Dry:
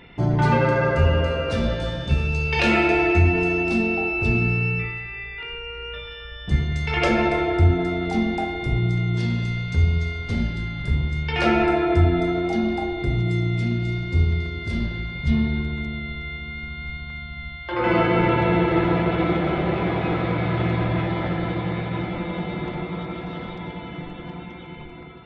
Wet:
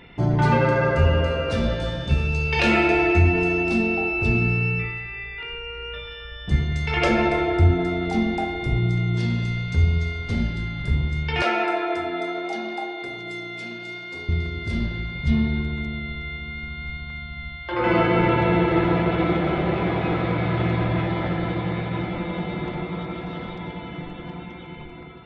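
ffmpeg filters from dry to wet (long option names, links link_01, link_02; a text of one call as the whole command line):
ffmpeg -i in.wav -filter_complex "[0:a]asettb=1/sr,asplit=3[link_01][link_02][link_03];[link_01]atrim=end=11.424[link_04];[link_02]atrim=start=11.42:end=14.29,asetpts=PTS-STARTPTS,afade=type=in:duration=0.004:curve=qsin,afade=type=out:start_time=2.866:duration=0.004:curve=qsin,highpass=500[link_05];[link_03]atrim=start=14.286[link_06];[link_04][link_05]acrossfade=duration=0.004:curve1=hsin:curve2=qsin[link_07];[link_07][link_06]acrossfade=duration=0.004:curve1=qsin:curve2=hsin" out.wav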